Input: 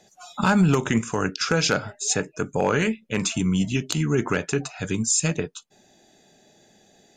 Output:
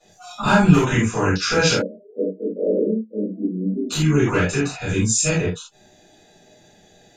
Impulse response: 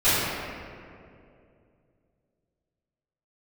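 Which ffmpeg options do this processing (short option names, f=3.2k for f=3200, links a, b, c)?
-filter_complex "[0:a]asplit=3[a][b][c];[a]afade=t=out:st=1.71:d=0.02[d];[b]asuperpass=centerf=340:order=20:qfactor=0.84,afade=t=in:st=1.71:d=0.02,afade=t=out:st=3.89:d=0.02[e];[c]afade=t=in:st=3.89:d=0.02[f];[d][e][f]amix=inputs=3:normalize=0[g];[1:a]atrim=start_sample=2205,atrim=end_sample=4410[h];[g][h]afir=irnorm=-1:irlink=0,volume=-11dB"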